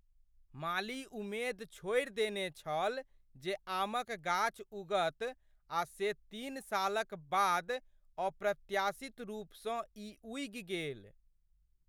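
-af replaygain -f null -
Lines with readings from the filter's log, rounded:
track_gain = +16.4 dB
track_peak = 0.083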